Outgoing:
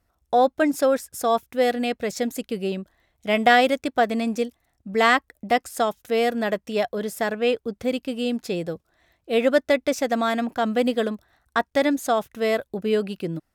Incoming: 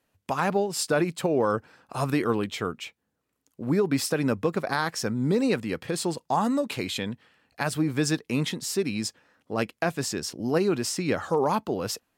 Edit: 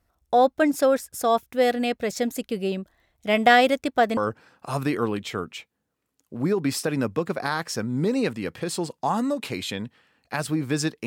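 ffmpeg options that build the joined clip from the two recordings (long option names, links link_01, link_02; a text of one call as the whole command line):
ffmpeg -i cue0.wav -i cue1.wav -filter_complex "[0:a]apad=whole_dur=11.06,atrim=end=11.06,atrim=end=4.172[link_01];[1:a]atrim=start=1.438:end=8.33[link_02];[link_01][link_02]acrossfade=duration=0.004:curve1=hsin:curve2=hsin" out.wav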